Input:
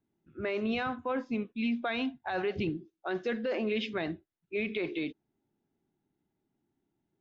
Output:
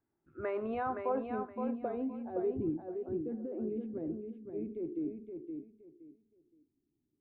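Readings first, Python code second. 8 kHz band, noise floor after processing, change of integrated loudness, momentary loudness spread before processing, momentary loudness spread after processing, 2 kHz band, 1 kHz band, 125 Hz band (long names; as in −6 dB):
can't be measured, −83 dBFS, −4.0 dB, 7 LU, 11 LU, −14.5 dB, −1.5 dB, −4.5 dB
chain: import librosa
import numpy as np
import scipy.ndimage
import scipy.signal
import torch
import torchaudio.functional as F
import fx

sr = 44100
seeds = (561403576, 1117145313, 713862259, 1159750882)

y = fx.peak_eq(x, sr, hz=190.0, db=-9.5, octaves=0.6)
y = fx.filter_sweep_lowpass(y, sr, from_hz=1500.0, to_hz=280.0, start_s=0.1, end_s=2.84, q=1.7)
y = fx.echo_feedback(y, sr, ms=519, feedback_pct=23, wet_db=-6.0)
y = F.gain(torch.from_numpy(y), -2.5).numpy()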